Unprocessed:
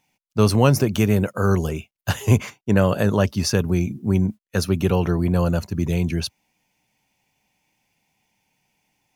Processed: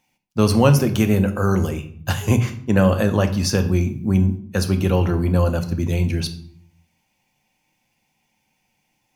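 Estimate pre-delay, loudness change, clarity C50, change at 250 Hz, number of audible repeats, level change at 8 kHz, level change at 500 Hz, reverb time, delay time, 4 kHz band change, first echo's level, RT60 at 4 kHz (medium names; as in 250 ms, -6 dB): 4 ms, +1.5 dB, 12.5 dB, +1.5 dB, no echo, +0.5 dB, +0.5 dB, 0.60 s, no echo, +0.5 dB, no echo, 0.45 s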